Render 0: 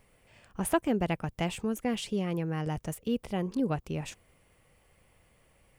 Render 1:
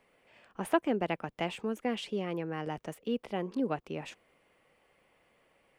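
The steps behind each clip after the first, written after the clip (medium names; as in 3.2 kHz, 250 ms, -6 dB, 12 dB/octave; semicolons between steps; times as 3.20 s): three-band isolator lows -18 dB, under 210 Hz, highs -12 dB, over 4.2 kHz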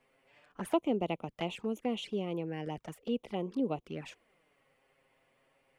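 touch-sensitive flanger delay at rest 8 ms, full sweep at -31 dBFS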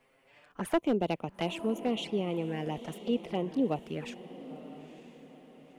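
echo that smears into a reverb 937 ms, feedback 40%, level -14 dB; hard clipper -23.5 dBFS, distortion -17 dB; trim +3.5 dB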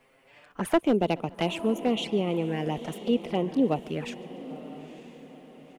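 feedback delay 142 ms, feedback 56%, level -23 dB; trim +5 dB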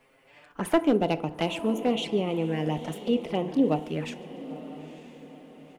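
FDN reverb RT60 0.61 s, low-frequency decay 0.85×, high-frequency decay 0.5×, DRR 11 dB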